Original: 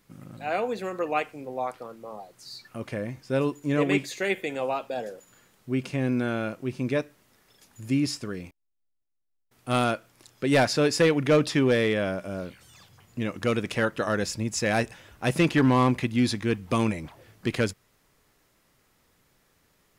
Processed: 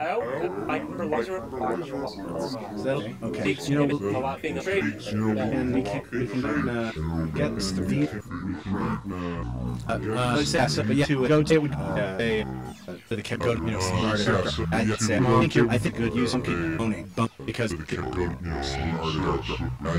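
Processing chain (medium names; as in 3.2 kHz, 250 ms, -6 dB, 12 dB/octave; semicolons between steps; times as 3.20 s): slices played last to first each 230 ms, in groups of 3; in parallel at 0 dB: compression, threshold -33 dBFS, peak gain reduction 15.5 dB; on the sum: chorus voices 2, 0.26 Hz, delay 16 ms, depth 3.5 ms; ever faster or slower copies 201 ms, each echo -5 st, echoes 3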